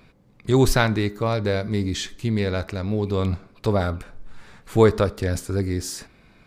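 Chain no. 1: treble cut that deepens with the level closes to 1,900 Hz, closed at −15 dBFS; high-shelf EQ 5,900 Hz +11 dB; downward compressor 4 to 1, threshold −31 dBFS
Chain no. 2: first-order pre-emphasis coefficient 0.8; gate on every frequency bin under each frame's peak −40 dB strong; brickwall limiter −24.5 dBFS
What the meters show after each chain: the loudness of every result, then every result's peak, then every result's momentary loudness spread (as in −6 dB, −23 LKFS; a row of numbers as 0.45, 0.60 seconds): −34.5, −37.0 LKFS; −15.5, −24.5 dBFS; 9, 8 LU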